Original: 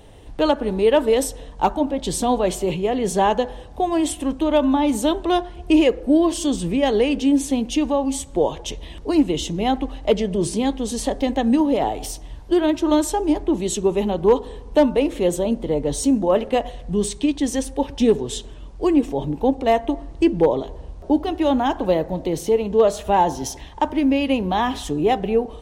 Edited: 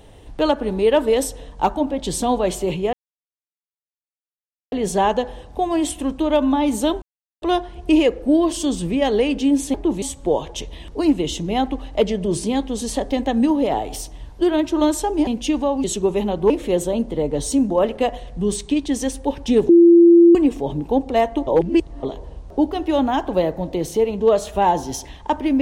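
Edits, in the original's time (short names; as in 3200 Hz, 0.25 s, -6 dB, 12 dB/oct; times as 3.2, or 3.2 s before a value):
2.93 insert silence 1.79 s
5.23 insert silence 0.40 s
7.55–8.12 swap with 13.37–13.65
14.31–15.02 cut
18.21–18.87 bleep 341 Hz -6 dBFS
19.99–20.55 reverse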